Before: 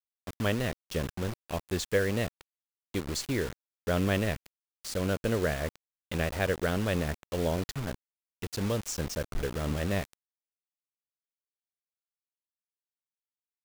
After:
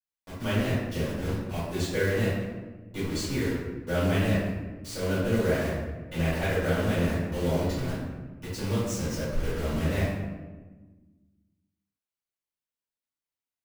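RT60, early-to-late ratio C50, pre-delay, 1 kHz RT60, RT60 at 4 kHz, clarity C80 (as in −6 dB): 1.3 s, −1.0 dB, 3 ms, 1.2 s, 0.75 s, 2.5 dB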